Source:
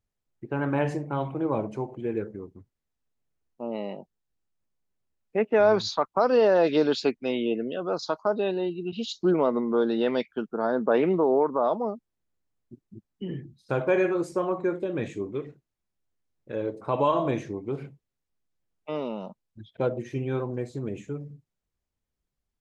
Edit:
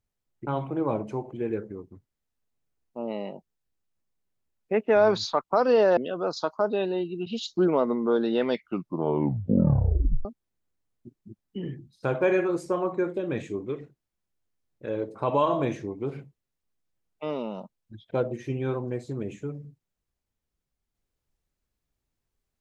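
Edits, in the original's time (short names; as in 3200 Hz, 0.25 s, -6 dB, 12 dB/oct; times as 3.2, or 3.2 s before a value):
0.47–1.11 cut
6.61–7.63 cut
10.17 tape stop 1.74 s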